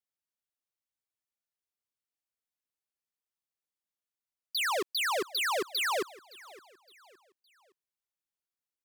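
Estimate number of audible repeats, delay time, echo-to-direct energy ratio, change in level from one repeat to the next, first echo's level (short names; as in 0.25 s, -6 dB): 2, 0.565 s, -20.5 dB, -8.0 dB, -21.0 dB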